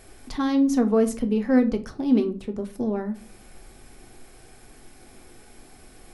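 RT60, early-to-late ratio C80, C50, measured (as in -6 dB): 0.40 s, 21.5 dB, 15.5 dB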